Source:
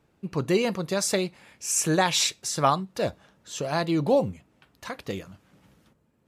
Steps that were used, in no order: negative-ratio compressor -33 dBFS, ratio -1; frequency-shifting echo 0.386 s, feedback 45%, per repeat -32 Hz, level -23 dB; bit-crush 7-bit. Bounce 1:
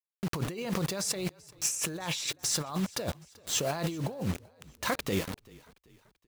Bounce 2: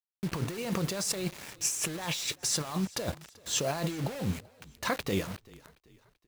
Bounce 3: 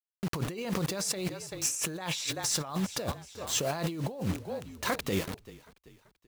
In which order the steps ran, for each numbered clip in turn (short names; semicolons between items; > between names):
bit-crush > negative-ratio compressor > frequency-shifting echo; negative-ratio compressor > bit-crush > frequency-shifting echo; bit-crush > frequency-shifting echo > negative-ratio compressor